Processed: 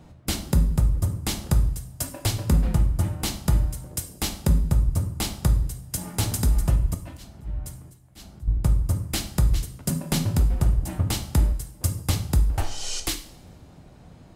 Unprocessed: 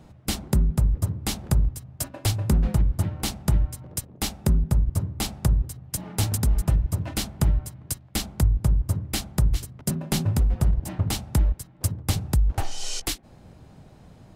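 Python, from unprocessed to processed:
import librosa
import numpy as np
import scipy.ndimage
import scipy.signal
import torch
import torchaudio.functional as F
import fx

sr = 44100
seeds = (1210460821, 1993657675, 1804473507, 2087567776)

y = fx.auto_swell(x, sr, attack_ms=310.0, at=(6.94, 8.48))
y = fx.rev_double_slope(y, sr, seeds[0], early_s=0.5, late_s=1.6, knee_db=-19, drr_db=6.0)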